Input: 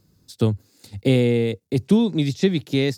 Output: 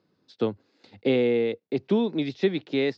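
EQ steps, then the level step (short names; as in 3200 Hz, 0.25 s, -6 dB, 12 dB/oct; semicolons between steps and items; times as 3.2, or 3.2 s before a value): BPF 320–4700 Hz; air absorption 190 m; 0.0 dB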